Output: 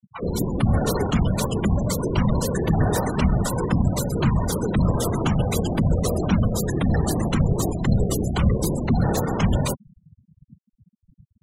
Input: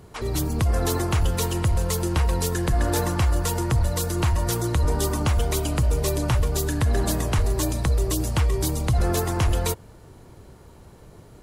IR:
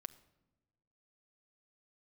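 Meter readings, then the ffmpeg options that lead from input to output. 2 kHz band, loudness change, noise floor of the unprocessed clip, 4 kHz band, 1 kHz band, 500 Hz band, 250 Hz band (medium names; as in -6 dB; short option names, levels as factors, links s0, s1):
-0.5 dB, +1.5 dB, -48 dBFS, -2.0 dB, +1.0 dB, +2.0 dB, +6.5 dB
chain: -af "afreqshift=53,afftfilt=real='hypot(re,im)*cos(2*PI*random(0))':imag='hypot(re,im)*sin(2*PI*random(1))':win_size=512:overlap=0.75,afftfilt=real='re*gte(hypot(re,im),0.02)':imag='im*gte(hypot(re,im),0.02)':win_size=1024:overlap=0.75,volume=2.24"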